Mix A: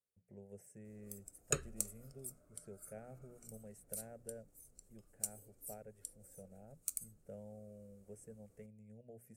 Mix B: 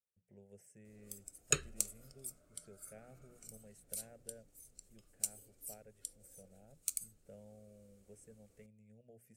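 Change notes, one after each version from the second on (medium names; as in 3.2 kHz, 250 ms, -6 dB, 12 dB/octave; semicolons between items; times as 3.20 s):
speech -5.0 dB; master: add FFT filter 1.1 kHz 0 dB, 3.3 kHz +10 dB, 11 kHz +1 dB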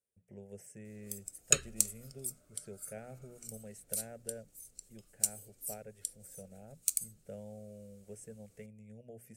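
speech +9.5 dB; background: add treble shelf 2.6 kHz +7 dB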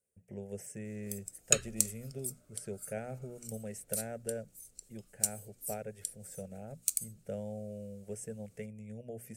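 speech +7.0 dB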